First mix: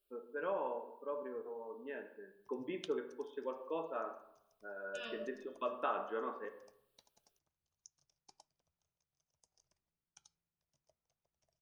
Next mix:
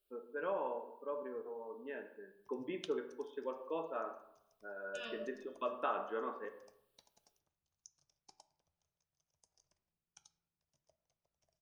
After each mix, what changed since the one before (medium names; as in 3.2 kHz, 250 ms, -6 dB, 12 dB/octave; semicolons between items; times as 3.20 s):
background: send on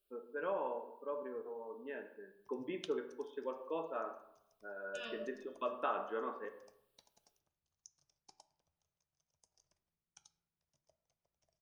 no change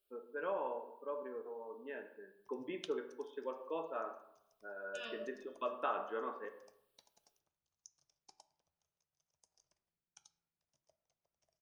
master: add bass shelf 180 Hz -7 dB